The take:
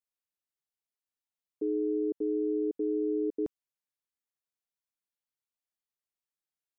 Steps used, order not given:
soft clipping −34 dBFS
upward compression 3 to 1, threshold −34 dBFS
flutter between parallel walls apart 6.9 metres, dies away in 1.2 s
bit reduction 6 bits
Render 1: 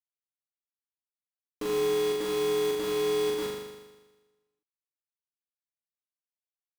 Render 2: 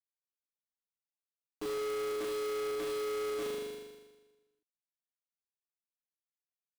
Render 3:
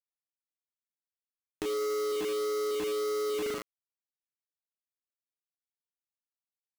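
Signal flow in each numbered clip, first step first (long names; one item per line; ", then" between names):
soft clipping, then upward compression, then bit reduction, then flutter between parallel walls
bit reduction, then upward compression, then flutter between parallel walls, then soft clipping
flutter between parallel walls, then soft clipping, then bit reduction, then upward compression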